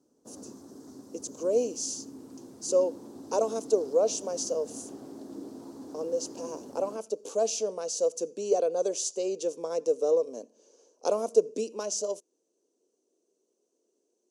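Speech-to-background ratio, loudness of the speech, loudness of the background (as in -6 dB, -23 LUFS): 16.0 dB, -29.5 LUFS, -45.5 LUFS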